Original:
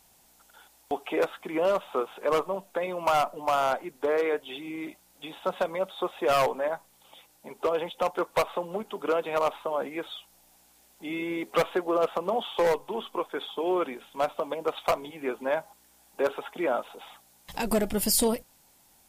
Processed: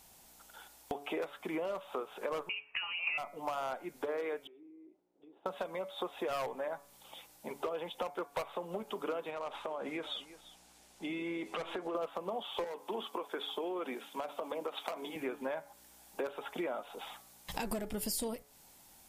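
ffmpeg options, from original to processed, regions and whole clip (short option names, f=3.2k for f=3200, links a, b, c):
-filter_complex "[0:a]asettb=1/sr,asplit=3[a][b][c];[a]atrim=end=2.494[d];[b]atrim=start=2.49:end=3.18,asetpts=PTS-STARTPTS,afade=t=in:d=0.004:c=qsin,afade=t=out:st=0.686:d=0.004:c=qsin,highpass=f=830:t=q:w=2.2,lowpass=f=2.9k:t=q:w=0.5098,lowpass=f=2.9k:t=q:w=0.6013,lowpass=f=2.9k:t=q:w=0.9,lowpass=f=2.9k:t=q:w=2.563,afreqshift=-3400[e];[c]atrim=start=3.176[f];[d][e]acrossfade=d=0.004:c1=hsin:c2=qsin[g];[g][f]acrossfade=d=0.004:c1=qsin:c2=hsin,asettb=1/sr,asplit=3[h][i][j];[h]atrim=end=4.474[k];[i]atrim=start=4.47:end=5.46,asetpts=PTS-STARTPTS,afade=t=in:d=0.004:c=qsin,afade=t=out:st=0.986:d=0.004:c=qsin,bandpass=f=370:t=q:w=4.2,acompressor=threshold=-54dB:ratio=16:attack=3.2:release=140:knee=1:detection=peak[l];[j]atrim=start=5.456[m];[k][l]acrossfade=d=0.004:c1=hsin:c2=qsin[n];[n][m]acrossfade=d=0.004:c1=qsin:c2=hsin,asettb=1/sr,asplit=3[o][p][q];[o]atrim=end=9.304[r];[p]atrim=start=9.3:end=11.95,asetpts=PTS-STARTPTS,afade=t=in:d=0.004:c=qsin,afade=t=out:st=2.646:d=0.004:c=qsin,lowpass=8.9k,acompressor=threshold=-33dB:ratio=6:attack=3.2:release=140:knee=1:detection=peak,aecho=1:1:345:0.119,atrim=end_sample=116865[s];[q]atrim=start=11.946[t];[r][s]acrossfade=d=0.004:c1=hsin:c2=qsin[u];[u][t]acrossfade=d=0.004:c1=qsin:c2=hsin,asettb=1/sr,asplit=3[v][w][x];[v]atrim=end=12.644[y];[w]atrim=start=12.64:end=15.16,asetpts=PTS-STARTPTS,afade=t=in:d=0.004:c=qsin,afade=t=out:st=2.516:d=0.004:c=qsin,highpass=f=190:w=0.5412,highpass=f=190:w=1.3066,acompressor=threshold=-28dB:ratio=6:attack=3.2:release=140:knee=1:detection=peak[z];[x]atrim=start=15.156[aa];[y][z]acrossfade=d=0.004:c1=hsin:c2=qsin[ab];[ab][aa]acrossfade=d=0.004:c1=qsin:c2=hsin,acompressor=threshold=-36dB:ratio=6,bandreject=f=142.8:t=h:w=4,bandreject=f=285.6:t=h:w=4,bandreject=f=428.4:t=h:w=4,bandreject=f=571.2:t=h:w=4,bandreject=f=714:t=h:w=4,bandreject=f=856.8:t=h:w=4,bandreject=f=999.6:t=h:w=4,bandreject=f=1.1424k:t=h:w=4,bandreject=f=1.2852k:t=h:w=4,bandreject=f=1.428k:t=h:w=4,bandreject=f=1.5708k:t=h:w=4,bandreject=f=1.7136k:t=h:w=4,bandreject=f=1.8564k:t=h:w=4,bandreject=f=1.9992k:t=h:w=4,bandreject=f=2.142k:t=h:w=4,bandreject=f=2.2848k:t=h:w=4,bandreject=f=2.4276k:t=h:w=4,volume=1dB"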